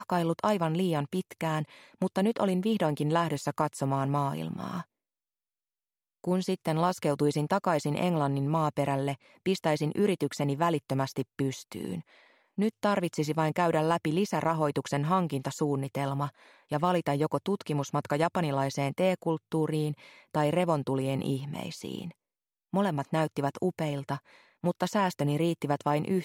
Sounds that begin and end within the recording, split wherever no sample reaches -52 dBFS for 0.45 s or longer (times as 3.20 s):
6.24–22.12 s